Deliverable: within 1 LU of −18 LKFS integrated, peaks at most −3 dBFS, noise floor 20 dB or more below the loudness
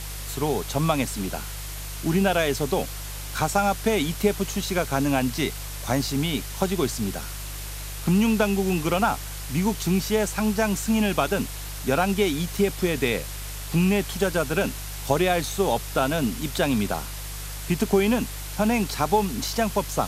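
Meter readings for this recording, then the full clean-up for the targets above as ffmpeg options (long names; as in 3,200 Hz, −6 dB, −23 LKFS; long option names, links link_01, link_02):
mains hum 50 Hz; hum harmonics up to 150 Hz; level of the hum −33 dBFS; background noise floor −34 dBFS; target noise floor −45 dBFS; integrated loudness −25.0 LKFS; sample peak −6.5 dBFS; target loudness −18.0 LKFS
→ -af "bandreject=frequency=50:width_type=h:width=4,bandreject=frequency=100:width_type=h:width=4,bandreject=frequency=150:width_type=h:width=4"
-af "afftdn=noise_reduction=11:noise_floor=-34"
-af "volume=7dB,alimiter=limit=-3dB:level=0:latency=1"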